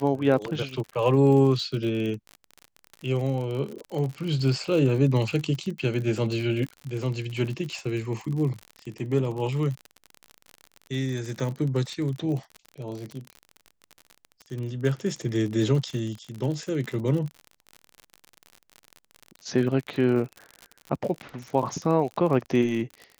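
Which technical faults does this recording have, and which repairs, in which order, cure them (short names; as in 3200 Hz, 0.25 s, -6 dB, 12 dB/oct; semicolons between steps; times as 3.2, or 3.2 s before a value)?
crackle 49/s -31 dBFS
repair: de-click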